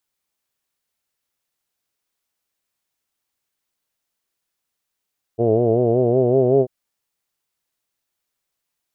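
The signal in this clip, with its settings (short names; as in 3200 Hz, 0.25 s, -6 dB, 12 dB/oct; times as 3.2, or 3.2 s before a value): formant vowel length 1.29 s, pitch 112 Hz, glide +3 st, F1 420 Hz, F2 670 Hz, F3 2900 Hz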